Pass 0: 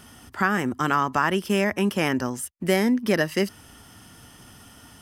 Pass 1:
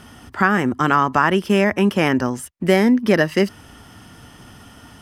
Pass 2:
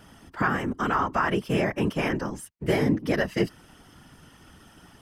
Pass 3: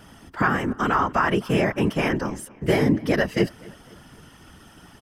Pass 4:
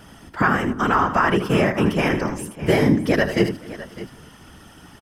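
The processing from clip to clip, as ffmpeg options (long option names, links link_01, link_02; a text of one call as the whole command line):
ffmpeg -i in.wav -af "aemphasis=mode=reproduction:type=cd,volume=6dB" out.wav
ffmpeg -i in.wav -af "afftfilt=real='hypot(re,im)*cos(2*PI*random(0))':imag='hypot(re,im)*sin(2*PI*random(1))':win_size=512:overlap=0.75,volume=-2.5dB" out.wav
ffmpeg -i in.wav -filter_complex "[0:a]asplit=2[link_01][link_02];[link_02]adelay=256,lowpass=frequency=3800:poles=1,volume=-23dB,asplit=2[link_03][link_04];[link_04]adelay=256,lowpass=frequency=3800:poles=1,volume=0.51,asplit=2[link_05][link_06];[link_06]adelay=256,lowpass=frequency=3800:poles=1,volume=0.51[link_07];[link_01][link_03][link_05][link_07]amix=inputs=4:normalize=0,volume=3.5dB" out.wav
ffmpeg -i in.wav -af "aecho=1:1:78|606:0.299|0.158,volume=2.5dB" out.wav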